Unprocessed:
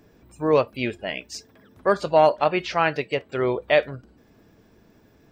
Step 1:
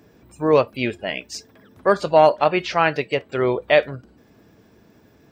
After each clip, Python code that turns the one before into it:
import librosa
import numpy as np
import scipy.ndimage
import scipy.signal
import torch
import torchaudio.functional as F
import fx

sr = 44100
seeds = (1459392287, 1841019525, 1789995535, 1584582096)

y = scipy.signal.sosfilt(scipy.signal.butter(2, 62.0, 'highpass', fs=sr, output='sos'), x)
y = F.gain(torch.from_numpy(y), 3.0).numpy()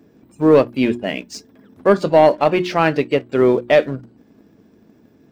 y = fx.peak_eq(x, sr, hz=250.0, db=11.5, octaves=1.6)
y = fx.leveller(y, sr, passes=1)
y = fx.hum_notches(y, sr, base_hz=60, count=6)
y = F.gain(torch.from_numpy(y), -3.5).numpy()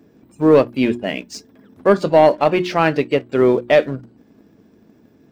y = x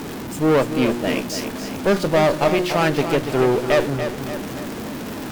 y = x + 0.5 * 10.0 ** (-20.5 / 20.0) * np.sign(x)
y = fx.tube_stage(y, sr, drive_db=12.0, bias=0.75)
y = fx.echo_feedback(y, sr, ms=287, feedback_pct=52, wet_db=-9)